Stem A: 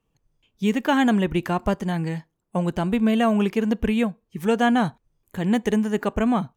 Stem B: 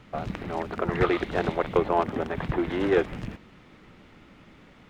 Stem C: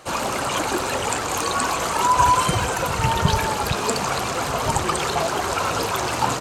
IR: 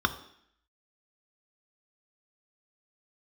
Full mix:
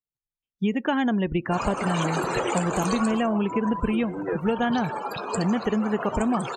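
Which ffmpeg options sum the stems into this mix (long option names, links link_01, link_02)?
-filter_complex "[0:a]volume=1.5dB[link_01];[1:a]aecho=1:1:6.2:0.67,adelay=1350,volume=-7.5dB[link_02];[2:a]highpass=220,adelay=1450,volume=6.5dB,afade=type=out:start_time=2.99:duration=0.34:silence=0.251189,afade=type=in:start_time=4.35:duration=0.38:silence=0.398107[link_03];[link_01][link_02][link_03]amix=inputs=3:normalize=0,afftdn=noise_reduction=32:noise_floor=-32,acompressor=threshold=-20dB:ratio=6"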